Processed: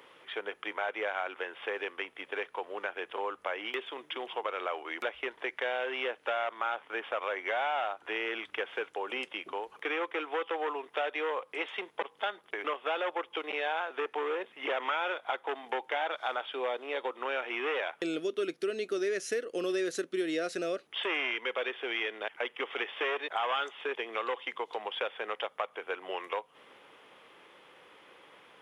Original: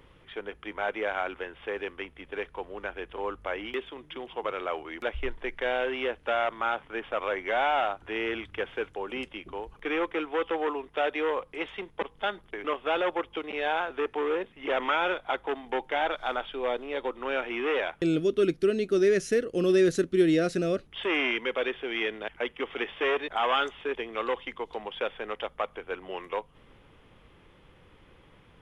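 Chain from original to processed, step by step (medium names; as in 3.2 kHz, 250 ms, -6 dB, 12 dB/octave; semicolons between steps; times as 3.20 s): high-pass 480 Hz 12 dB/octave; compression 2.5:1, threshold -38 dBFS, peak gain reduction 11 dB; trim +5 dB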